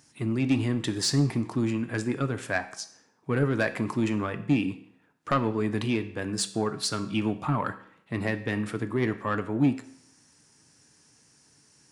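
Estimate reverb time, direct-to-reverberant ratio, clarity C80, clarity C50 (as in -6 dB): 0.65 s, 9.0 dB, 16.5 dB, 14.0 dB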